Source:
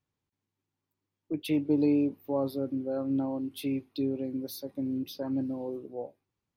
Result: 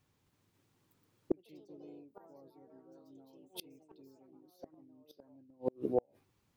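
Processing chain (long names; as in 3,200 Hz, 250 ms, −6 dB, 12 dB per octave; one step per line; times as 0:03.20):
delay with pitch and tempo change per echo 266 ms, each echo +3 semitones, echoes 3
gate with flip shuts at −27 dBFS, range −40 dB
level +10 dB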